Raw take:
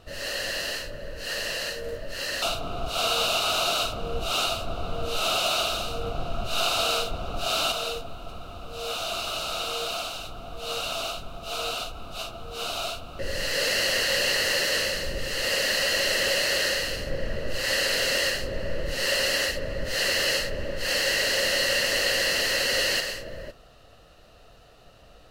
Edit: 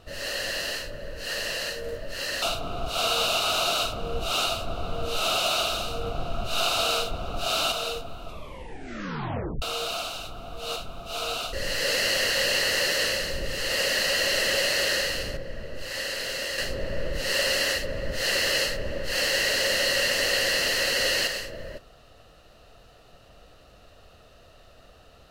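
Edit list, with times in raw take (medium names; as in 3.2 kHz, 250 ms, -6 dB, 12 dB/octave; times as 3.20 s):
8.25 s: tape stop 1.37 s
10.76–11.13 s: delete
11.90–13.26 s: delete
17.10–18.31 s: gain -6.5 dB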